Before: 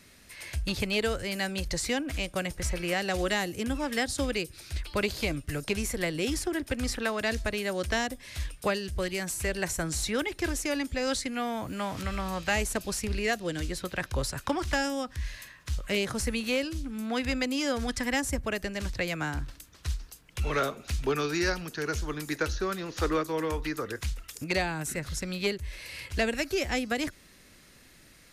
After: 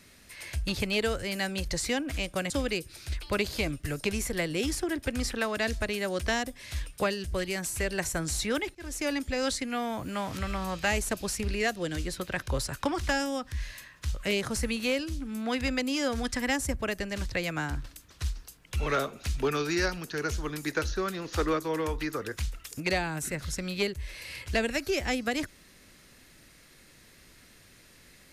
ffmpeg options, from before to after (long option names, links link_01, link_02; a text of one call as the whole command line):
ffmpeg -i in.wav -filter_complex "[0:a]asplit=3[link_01][link_02][link_03];[link_01]atrim=end=2.502[link_04];[link_02]atrim=start=4.138:end=10.39,asetpts=PTS-STARTPTS,afade=type=out:start_time=6.248:duration=0.004:curve=hsin[link_05];[link_03]atrim=start=10.39,asetpts=PTS-STARTPTS,afade=type=in:duration=0.3[link_06];[link_05][link_06]concat=n=2:v=0:a=1[link_07];[link_04][link_07]acrossfade=duration=0.004:curve1=hsin:curve2=hsin" out.wav